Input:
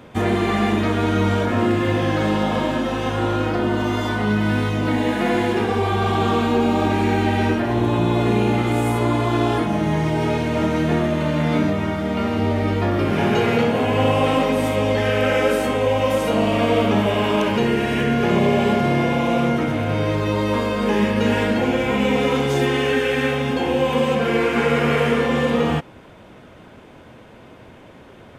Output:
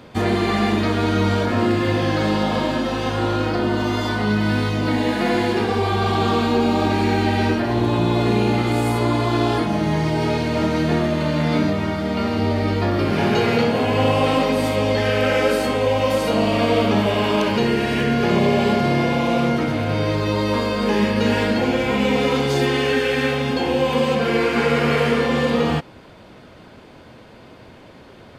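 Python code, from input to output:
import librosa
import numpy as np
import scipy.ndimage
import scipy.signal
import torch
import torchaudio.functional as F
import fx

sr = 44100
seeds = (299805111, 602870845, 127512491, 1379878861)

y = fx.peak_eq(x, sr, hz=4500.0, db=10.5, octaves=0.35)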